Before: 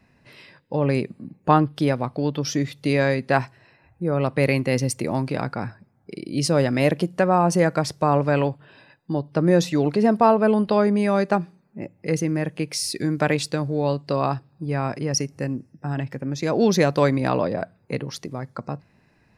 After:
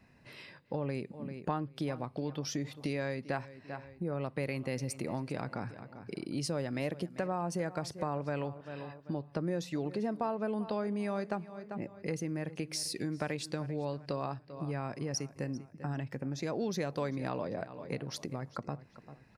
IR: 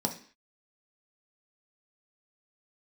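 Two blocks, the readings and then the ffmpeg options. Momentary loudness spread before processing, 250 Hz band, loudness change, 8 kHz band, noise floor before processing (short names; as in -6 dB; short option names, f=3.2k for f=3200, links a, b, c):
14 LU, -14.0 dB, -14.5 dB, -12.0 dB, -61 dBFS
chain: -filter_complex "[0:a]asplit=2[a][b];[b]adelay=393,lowpass=f=4.9k:p=1,volume=-18.5dB,asplit=2[c][d];[d]adelay=393,lowpass=f=4.9k:p=1,volume=0.3,asplit=2[e][f];[f]adelay=393,lowpass=f=4.9k:p=1,volume=0.3[g];[a][c][e][g]amix=inputs=4:normalize=0,acompressor=threshold=-32dB:ratio=3,volume=-3.5dB"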